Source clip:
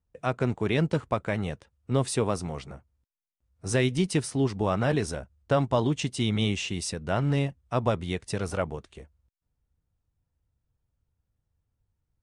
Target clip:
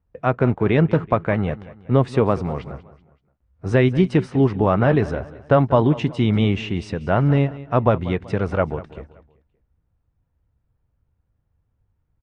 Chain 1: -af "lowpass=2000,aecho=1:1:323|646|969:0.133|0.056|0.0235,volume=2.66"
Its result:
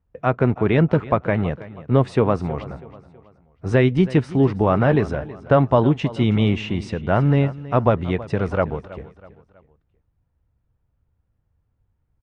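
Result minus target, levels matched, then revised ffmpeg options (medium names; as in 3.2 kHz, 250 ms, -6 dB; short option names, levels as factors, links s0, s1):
echo 133 ms late
-af "lowpass=2000,aecho=1:1:190|380|570:0.133|0.056|0.0235,volume=2.66"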